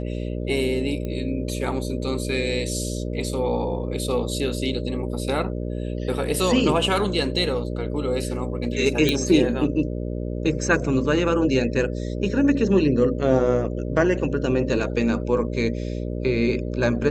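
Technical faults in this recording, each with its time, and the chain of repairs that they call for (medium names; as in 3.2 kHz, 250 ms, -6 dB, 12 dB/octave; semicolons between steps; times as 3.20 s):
buzz 60 Hz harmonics 10 -28 dBFS
1.05 s: pop -19 dBFS
9.09 s: pop -7 dBFS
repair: de-click; de-hum 60 Hz, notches 10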